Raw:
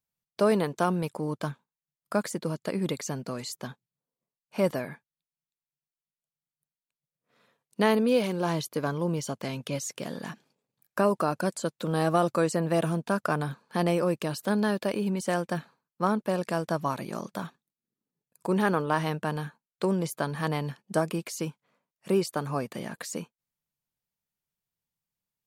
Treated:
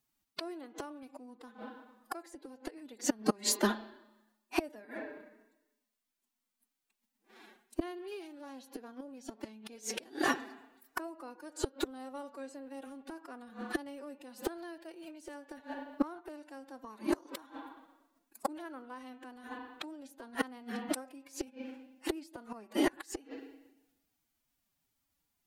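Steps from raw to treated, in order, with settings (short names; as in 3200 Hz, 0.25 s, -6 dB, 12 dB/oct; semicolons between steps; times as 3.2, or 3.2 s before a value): spring tank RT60 1 s, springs 30/38 ms, chirp 30 ms, DRR 12.5 dB; flipped gate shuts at -24 dBFS, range -30 dB; formant-preserving pitch shift +8.5 st; gain +10 dB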